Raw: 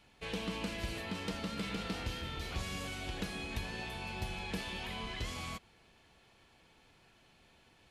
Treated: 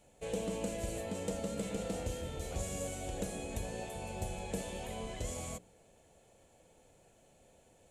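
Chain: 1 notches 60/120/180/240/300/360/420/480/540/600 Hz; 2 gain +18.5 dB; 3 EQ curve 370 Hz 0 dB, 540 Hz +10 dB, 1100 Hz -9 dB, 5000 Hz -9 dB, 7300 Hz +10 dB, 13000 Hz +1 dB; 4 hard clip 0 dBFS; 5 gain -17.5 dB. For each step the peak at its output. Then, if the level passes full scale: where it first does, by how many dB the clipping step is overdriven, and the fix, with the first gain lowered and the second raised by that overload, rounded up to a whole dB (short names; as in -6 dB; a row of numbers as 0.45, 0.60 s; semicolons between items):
-25.5, -7.0, -5.5, -5.5, -23.0 dBFS; no overload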